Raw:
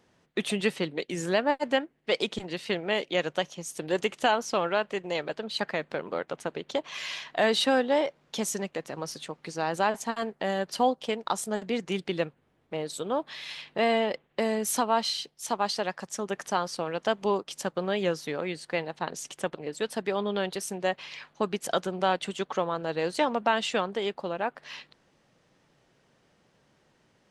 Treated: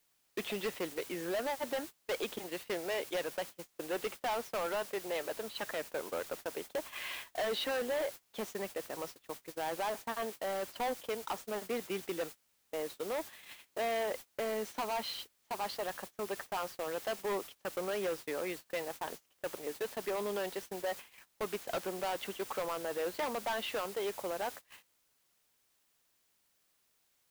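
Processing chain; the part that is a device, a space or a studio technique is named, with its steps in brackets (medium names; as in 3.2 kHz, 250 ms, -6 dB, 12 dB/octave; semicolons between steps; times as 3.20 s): aircraft radio (band-pass 310–2700 Hz; hard clipper -28 dBFS, distortion -6 dB; white noise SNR 11 dB; gate -40 dBFS, range -25 dB); trim -3 dB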